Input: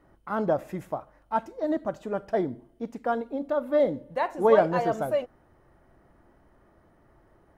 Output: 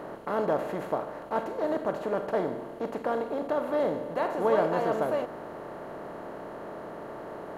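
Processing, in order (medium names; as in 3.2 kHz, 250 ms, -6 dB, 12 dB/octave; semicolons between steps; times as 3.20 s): spectral levelling over time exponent 0.4; trim -8 dB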